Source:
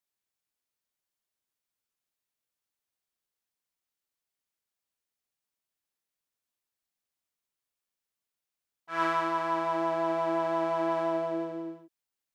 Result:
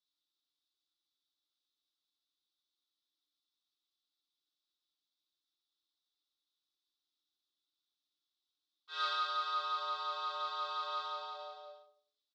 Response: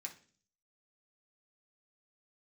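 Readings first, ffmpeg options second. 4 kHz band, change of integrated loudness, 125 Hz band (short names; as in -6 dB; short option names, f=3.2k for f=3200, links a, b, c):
+7.5 dB, -7.5 dB, under -40 dB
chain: -filter_complex "[0:a]acontrast=81,firequalizer=gain_entry='entry(120,0);entry(210,-18);entry(1100,-1);entry(1500,-29);entry(3300,13);entry(7500,-19)':delay=0.05:min_phase=1,asplit=2[a][b];[b]adelay=93,lowpass=f=910:p=1,volume=-7.5dB,asplit=2[c][d];[d]adelay=93,lowpass=f=910:p=1,volume=0.34,asplit=2[e][f];[f]adelay=93,lowpass=f=910:p=1,volume=0.34,asplit=2[g][h];[h]adelay=93,lowpass=f=910:p=1,volume=0.34[i];[a][c][e][g][i]amix=inputs=5:normalize=0,afreqshift=260[j];[1:a]atrim=start_sample=2205,atrim=end_sample=3528[k];[j][k]afir=irnorm=-1:irlink=0,volume=-2.5dB"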